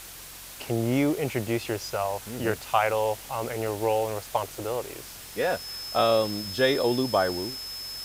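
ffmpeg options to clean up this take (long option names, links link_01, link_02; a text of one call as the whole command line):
ffmpeg -i in.wav -af "adeclick=threshold=4,bandreject=frequency=45.2:width_type=h:width=4,bandreject=frequency=90.4:width_type=h:width=4,bandreject=frequency=135.6:width_type=h:width=4,bandreject=frequency=5200:width=30,afwtdn=0.0079" out.wav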